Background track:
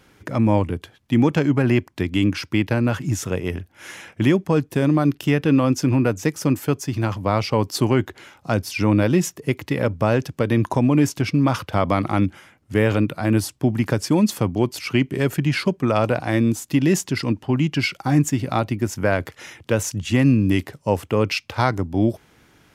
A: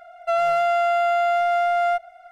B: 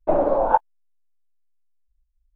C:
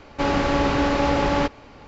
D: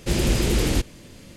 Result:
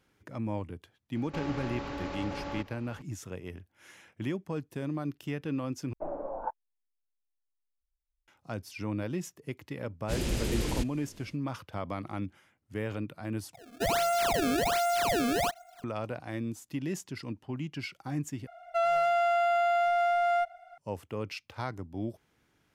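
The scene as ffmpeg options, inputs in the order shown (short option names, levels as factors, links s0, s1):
-filter_complex "[1:a]asplit=2[s0][s1];[0:a]volume=0.15[s2];[3:a]acompressor=threshold=0.0562:ratio=6:attack=3.2:release=140:knee=1:detection=peak[s3];[2:a]lowpass=2000[s4];[s0]acrusher=samples=26:mix=1:aa=0.000001:lfo=1:lforange=41.6:lforate=1.3[s5];[s2]asplit=4[s6][s7][s8][s9];[s6]atrim=end=5.934[s10];[s4]atrim=end=2.35,asetpts=PTS-STARTPTS,volume=0.133[s11];[s7]atrim=start=8.276:end=13.534[s12];[s5]atrim=end=2.31,asetpts=PTS-STARTPTS,volume=0.422[s13];[s8]atrim=start=15.836:end=18.474[s14];[s1]atrim=end=2.31,asetpts=PTS-STARTPTS,volume=0.501[s15];[s9]atrim=start=20.776[s16];[s3]atrim=end=1.87,asetpts=PTS-STARTPTS,volume=0.355,afade=t=in:d=0.004:c=hsin,afade=t=out:st=1.866:d=0.004:c=hsin,adelay=1150[s17];[4:a]atrim=end=1.36,asetpts=PTS-STARTPTS,volume=0.316,afade=t=in:d=0.1,afade=t=out:st=1.26:d=0.1,adelay=441882S[s18];[s10][s11]acrossfade=d=0.004:c1=hsin:c2=hsin[s19];[s19][s12]acrossfade=d=0.004:c1=hsin:c2=hsin[s20];[s20][s13]acrossfade=d=0.004:c1=hsin:c2=hsin[s21];[s21][s14]acrossfade=d=0.004:c1=hsin:c2=hsin[s22];[s22][s15]acrossfade=d=0.004:c1=hsin:c2=hsin[s23];[s23][s16]acrossfade=d=0.004:c1=hsin:c2=hsin[s24];[s24][s17][s18]amix=inputs=3:normalize=0"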